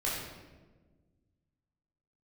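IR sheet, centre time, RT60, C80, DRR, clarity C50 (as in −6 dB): 75 ms, 1.4 s, 3.0 dB, −6.5 dB, 0.5 dB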